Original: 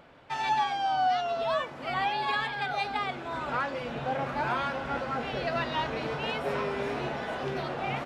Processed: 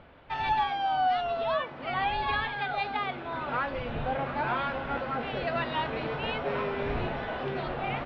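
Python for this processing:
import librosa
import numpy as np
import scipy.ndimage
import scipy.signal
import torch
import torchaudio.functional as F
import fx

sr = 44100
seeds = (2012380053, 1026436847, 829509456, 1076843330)

y = fx.dmg_wind(x, sr, seeds[0], corner_hz=100.0, level_db=-45.0)
y = scipy.signal.sosfilt(scipy.signal.butter(4, 3900.0, 'lowpass', fs=sr, output='sos'), y)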